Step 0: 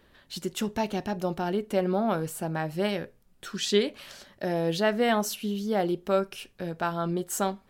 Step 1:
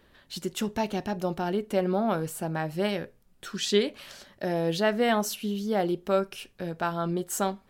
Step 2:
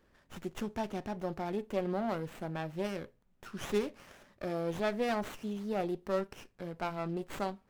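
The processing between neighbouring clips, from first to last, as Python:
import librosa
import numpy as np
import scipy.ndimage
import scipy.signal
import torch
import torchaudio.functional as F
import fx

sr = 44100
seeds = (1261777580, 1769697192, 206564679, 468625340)

y1 = x
y2 = fx.wow_flutter(y1, sr, seeds[0], rate_hz=2.1, depth_cents=24.0)
y2 = fx.running_max(y2, sr, window=9)
y2 = F.gain(torch.from_numpy(y2), -7.0).numpy()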